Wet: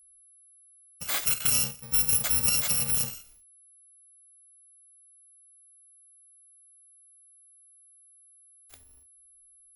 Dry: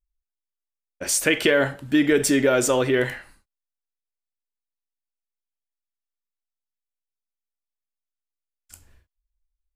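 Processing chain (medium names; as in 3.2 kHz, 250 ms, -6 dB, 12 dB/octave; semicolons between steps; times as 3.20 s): bit-reversed sample order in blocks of 128 samples; whistle 11 kHz -49 dBFS; trim -6 dB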